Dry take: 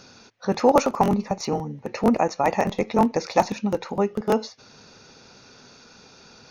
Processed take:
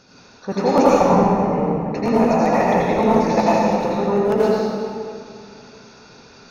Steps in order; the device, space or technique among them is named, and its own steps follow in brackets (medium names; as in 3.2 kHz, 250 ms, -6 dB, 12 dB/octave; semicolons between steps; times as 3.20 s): 0.91–1.90 s: inverse Chebyshev low-pass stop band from 4.5 kHz, stop band 40 dB; swimming-pool hall (reverberation RT60 2.3 s, pre-delay 76 ms, DRR -8 dB; treble shelf 5.7 kHz -6 dB); trim -3 dB